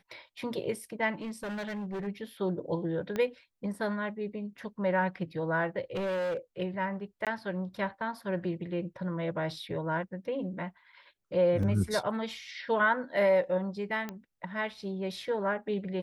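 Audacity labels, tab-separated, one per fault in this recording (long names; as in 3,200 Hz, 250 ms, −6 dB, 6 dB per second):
1.210000	2.080000	clipping −33 dBFS
3.160000	3.160000	click −20 dBFS
5.950000	6.370000	clipping −29 dBFS
7.250000	7.270000	drop-out 17 ms
11.630000	11.630000	drop-out 2.7 ms
14.090000	14.090000	click −22 dBFS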